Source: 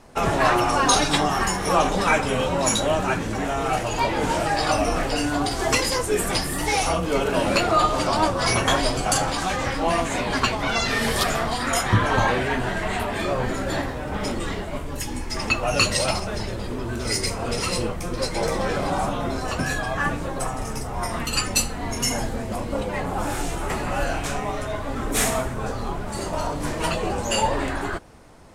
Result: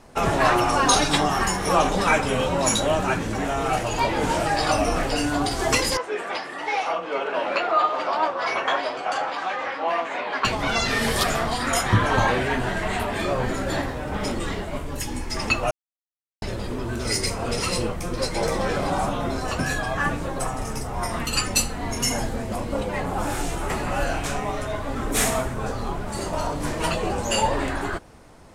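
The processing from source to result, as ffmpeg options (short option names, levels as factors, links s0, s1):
-filter_complex "[0:a]asettb=1/sr,asplit=3[s0][s1][s2];[s0]atrim=end=5.974[s3];[s1]atrim=start=5.97:end=10.45,asetpts=PTS-STARTPTS,afade=t=in:d=0.004:c=qsin,afade=t=out:st=4.476:d=0.004:c=qsin,highpass=540,lowpass=2600[s4];[s2]atrim=start=10.446[s5];[s3][s4]acrossfade=d=0.004:c1=hsin:c2=qsin[s6];[s6][s5]acrossfade=d=0.004:c1=qsin:c2=hsin,asplit=3[s7][s8][s9];[s7]atrim=end=15.71,asetpts=PTS-STARTPTS,afade=t=out:st=15.706:d=0.004:c=hsin[s10];[s8]atrim=start=15.71:end=16.42,asetpts=PTS-STARTPTS,volume=0[s11];[s9]atrim=start=16.42,asetpts=PTS-STARTPTS,afade=t=in:d=0.004:c=hsin[s12];[s10][s11][s12]concat=n=3:v=0:a=1"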